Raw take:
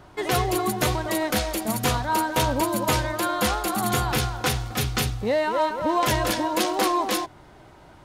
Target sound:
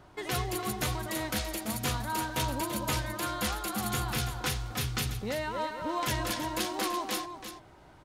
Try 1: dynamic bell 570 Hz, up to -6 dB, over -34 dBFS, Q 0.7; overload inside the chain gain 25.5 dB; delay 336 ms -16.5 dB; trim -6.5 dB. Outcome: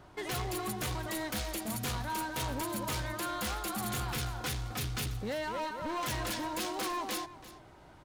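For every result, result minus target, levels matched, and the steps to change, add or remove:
overload inside the chain: distortion +36 dB; echo-to-direct -7 dB
change: overload inside the chain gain 14 dB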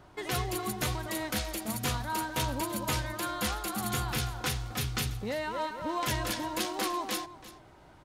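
echo-to-direct -7 dB
change: delay 336 ms -9.5 dB

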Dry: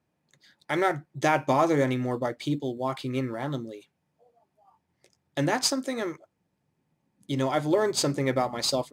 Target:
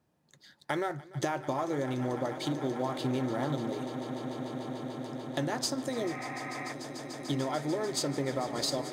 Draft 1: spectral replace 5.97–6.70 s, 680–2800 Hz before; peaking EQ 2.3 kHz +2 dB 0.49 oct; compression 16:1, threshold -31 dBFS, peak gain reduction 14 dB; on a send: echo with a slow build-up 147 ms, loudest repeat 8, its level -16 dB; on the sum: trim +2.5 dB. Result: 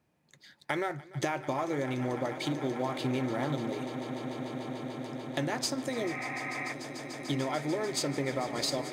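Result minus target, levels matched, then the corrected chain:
2 kHz band +3.5 dB
spectral replace 5.97–6.70 s, 680–2800 Hz before; peaking EQ 2.3 kHz -6 dB 0.49 oct; compression 16:1, threshold -31 dBFS, peak gain reduction 14 dB; on a send: echo with a slow build-up 147 ms, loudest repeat 8, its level -16 dB; on the sum: trim +2.5 dB

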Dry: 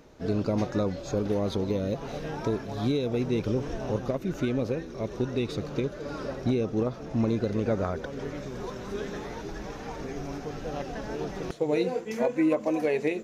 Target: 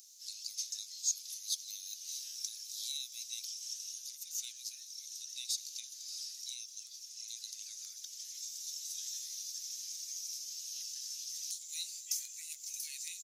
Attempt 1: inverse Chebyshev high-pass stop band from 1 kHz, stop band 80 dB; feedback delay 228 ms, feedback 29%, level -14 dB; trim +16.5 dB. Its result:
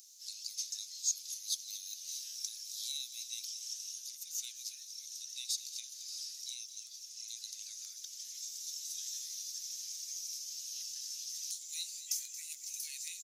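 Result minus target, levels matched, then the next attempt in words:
echo-to-direct +11 dB
inverse Chebyshev high-pass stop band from 1 kHz, stop band 80 dB; feedback delay 228 ms, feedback 29%, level -25 dB; trim +16.5 dB

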